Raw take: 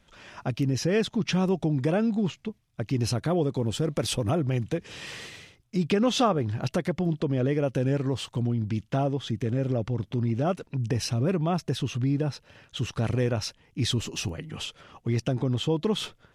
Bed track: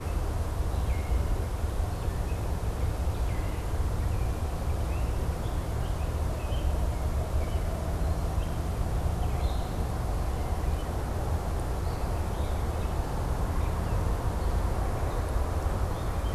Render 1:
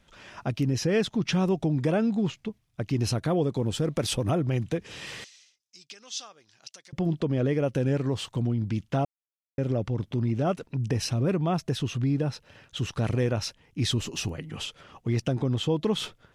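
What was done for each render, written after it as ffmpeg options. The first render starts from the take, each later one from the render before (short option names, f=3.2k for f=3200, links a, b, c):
-filter_complex "[0:a]asettb=1/sr,asplit=3[a][b][c];[a]atrim=end=5.244[d];[b]atrim=start=5.24:end=6.93,asetpts=PTS-STARTPTS,afade=t=in:d=0.004:c=qsin,afade=t=out:st=1.686:d=0.004:c=qsin,bandpass=f=5.8k:t=q:w=2.4[e];[c]atrim=start=6.926[f];[d][e]acrossfade=d=0.004:c1=hsin:c2=qsin[g];[g][f]acrossfade=d=0.004:c1=qsin:c2=hsin,asplit=3[h][i][j];[h]atrim=end=9.05,asetpts=PTS-STARTPTS,afade=t=out:st=9.046:d=0.004:c=hsin[k];[i]atrim=start=9.05:end=9.58,asetpts=PTS-STARTPTS,volume=0[l];[j]atrim=start=9.58,asetpts=PTS-STARTPTS,afade=t=in:d=0.004:c=hsin[m];[k][l][m]concat=n=3:v=0:a=1"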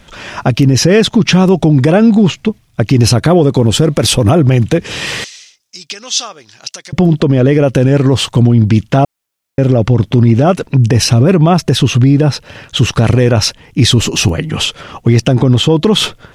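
-af "acontrast=85,alimiter=level_in=13dB:limit=-1dB:release=50:level=0:latency=1"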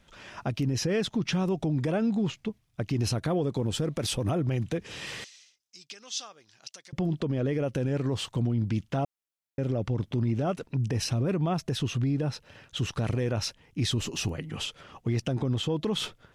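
-af "volume=-19dB"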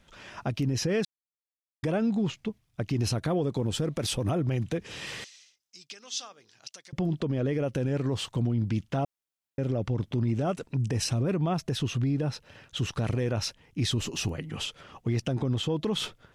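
-filter_complex "[0:a]asettb=1/sr,asplit=3[a][b][c];[a]atrim=end=5.954[d];[b]atrim=start=5.95:end=6.68,asetpts=PTS-STARTPTS,afade=t=in:d=0.004:c=qsin,afade=t=out:st=0.726:d=0.004:c=qsin,bandreject=f=52.64:t=h:w=4,bandreject=f=105.28:t=h:w=4,bandreject=f=157.92:t=h:w=4,bandreject=f=210.56:t=h:w=4,bandreject=f=263.2:t=h:w=4,bandreject=f=315.84:t=h:w=4,bandreject=f=368.48:t=h:w=4,bandreject=f=421.12:t=h:w=4,bandreject=f=473.76:t=h:w=4[e];[c]atrim=start=6.676[f];[d][e]acrossfade=d=0.004:c1=hsin:c2=qsin[g];[g][f]acrossfade=d=0.004:c1=qsin:c2=hsin,asettb=1/sr,asplit=3[h][i][j];[h]atrim=end=10.284[k];[i]atrim=start=10.28:end=11.23,asetpts=PTS-STARTPTS,afade=t=in:d=0.004:c=qsin,afade=t=out:st=0.946:d=0.004:c=qsin,equalizer=f=8k:t=o:w=0.55:g=6[l];[j]atrim=start=11.226[m];[k][l]acrossfade=d=0.004:c1=hsin:c2=qsin[n];[n][m]acrossfade=d=0.004:c1=qsin:c2=hsin,asplit=3[o][p][q];[o]atrim=end=1.05,asetpts=PTS-STARTPTS,afade=t=out:st=1.046:d=0.004:c=hsin[r];[p]atrim=start=1.05:end=1.83,asetpts=PTS-STARTPTS,volume=0[s];[q]atrim=start=1.83,asetpts=PTS-STARTPTS,afade=t=in:d=0.004:c=hsin[t];[r][s][t]concat=n=3:v=0:a=1"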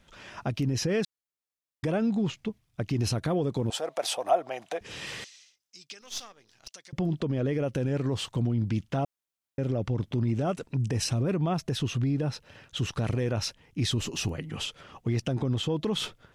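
-filter_complex "[0:a]asettb=1/sr,asplit=3[a][b][c];[a]atrim=end=3.704[d];[b]atrim=start=3.7:end=4.81,asetpts=PTS-STARTPTS,afade=t=in:d=0.004:c=qsin,afade=t=out:st=1.106:d=0.004:c=qsin,highpass=f=700:t=q:w=4.8[e];[c]atrim=start=4.806[f];[d][e]acrossfade=d=0.004:c1=hsin:c2=qsin[g];[g][f]acrossfade=d=0.004:c1=qsin:c2=hsin,asettb=1/sr,asplit=3[h][i][j];[h]atrim=end=6.014[k];[i]atrim=start=6.01:end=6.68,asetpts=PTS-STARTPTS,afade=t=in:d=0.004:c=qsin,afade=t=out:st=0.666:d=0.004:c=qsin,aeval=exprs='if(lt(val(0),0),0.447*val(0),val(0))':c=same[l];[j]atrim=start=6.676[m];[k][l]acrossfade=d=0.004:c1=hsin:c2=qsin[n];[n][m]acrossfade=d=0.004:c1=qsin:c2=hsin"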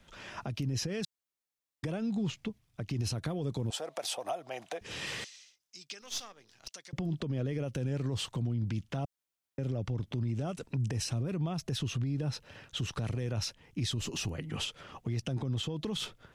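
-filter_complex "[0:a]acrossover=split=160|3000[a][b][c];[b]acompressor=threshold=-33dB:ratio=6[d];[a][d][c]amix=inputs=3:normalize=0,alimiter=level_in=1dB:limit=-24dB:level=0:latency=1:release=200,volume=-1dB"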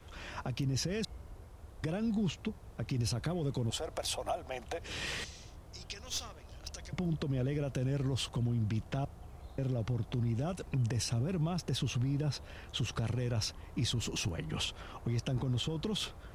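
-filter_complex "[1:a]volume=-21dB[a];[0:a][a]amix=inputs=2:normalize=0"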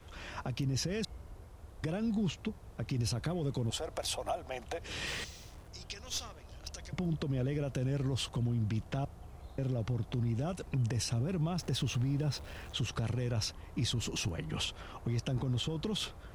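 -filter_complex "[0:a]asettb=1/sr,asplit=3[a][b][c];[a]atrim=end=5.074[d];[b]atrim=start=5.07:end=5.68,asetpts=PTS-STARTPTS,afade=t=in:d=0.004:c=qsin,afade=t=out:st=0.606:d=0.004:c=qsin,acrusher=bits=8:mix=0:aa=0.5[e];[c]atrim=start=5.676[f];[d][e]acrossfade=d=0.004:c1=hsin:c2=qsin[g];[g][f]acrossfade=d=0.004:c1=qsin:c2=hsin,asettb=1/sr,asplit=3[h][i][j];[h]atrim=end=11.584[k];[i]atrim=start=11.58:end=12.73,asetpts=PTS-STARTPTS,afade=t=in:d=0.004:c=qsin,afade=t=out:st=1.146:d=0.004:c=qsin,aeval=exprs='val(0)+0.5*0.00335*sgn(val(0))':c=same[l];[j]atrim=start=12.726[m];[k][l]acrossfade=d=0.004:c1=hsin:c2=qsin[n];[n][m]acrossfade=d=0.004:c1=qsin:c2=hsin"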